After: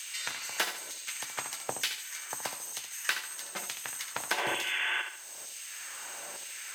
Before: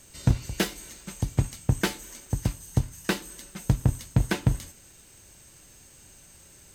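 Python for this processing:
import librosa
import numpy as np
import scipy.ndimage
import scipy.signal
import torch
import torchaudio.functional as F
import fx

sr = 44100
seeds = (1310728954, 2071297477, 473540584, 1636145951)

y = fx.spec_repair(x, sr, seeds[0], start_s=4.4, length_s=0.59, low_hz=250.0, high_hz=3500.0, source='before')
y = fx.filter_lfo_highpass(y, sr, shape='saw_down', hz=1.1, low_hz=520.0, high_hz=3200.0, q=1.3)
y = fx.echo_feedback(y, sr, ms=72, feedback_pct=34, wet_db=-9.0)
y = fx.band_squash(y, sr, depth_pct=70)
y = y * librosa.db_to_amplitude(1.5)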